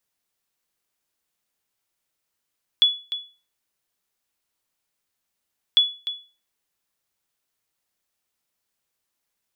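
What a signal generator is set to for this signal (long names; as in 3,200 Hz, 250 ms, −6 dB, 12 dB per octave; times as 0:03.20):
ping with an echo 3,410 Hz, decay 0.34 s, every 2.95 s, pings 2, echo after 0.30 s, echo −12.5 dB −8.5 dBFS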